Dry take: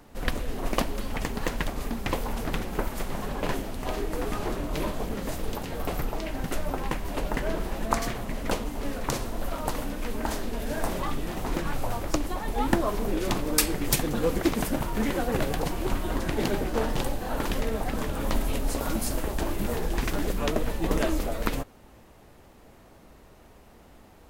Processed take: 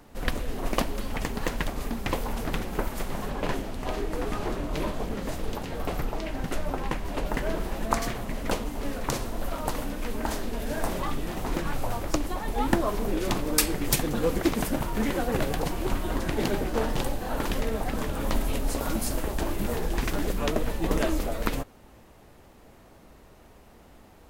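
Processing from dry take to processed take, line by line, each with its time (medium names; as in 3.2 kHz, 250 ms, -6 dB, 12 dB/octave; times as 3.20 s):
3.30–7.26 s: treble shelf 9.4 kHz -7 dB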